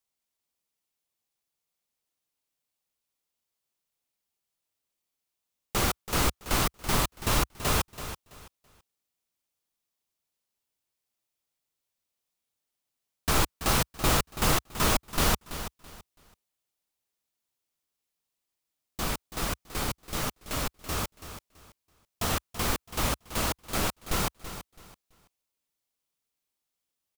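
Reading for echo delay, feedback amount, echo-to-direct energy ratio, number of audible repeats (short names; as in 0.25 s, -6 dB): 0.331 s, 25%, -11.5 dB, 2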